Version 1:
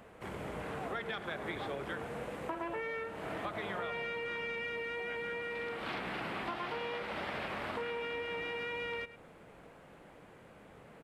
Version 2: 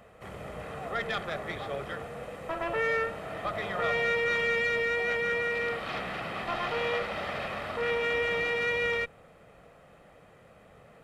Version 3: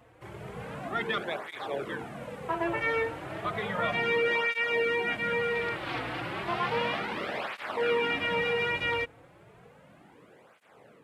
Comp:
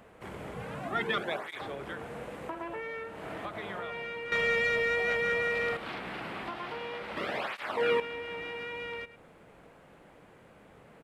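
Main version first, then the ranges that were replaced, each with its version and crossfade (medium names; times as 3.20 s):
1
0.54–1.61 s: from 3
4.32–5.77 s: from 2
7.17–8.00 s: from 3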